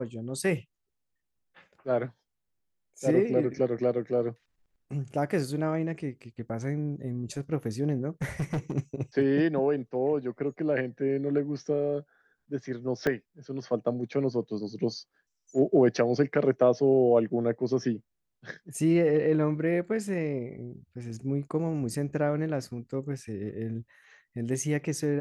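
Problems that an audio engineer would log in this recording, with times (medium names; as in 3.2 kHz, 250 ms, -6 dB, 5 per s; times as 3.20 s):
8.22–8.72 s: clipped -25.5 dBFS
13.07 s: dropout 3.2 ms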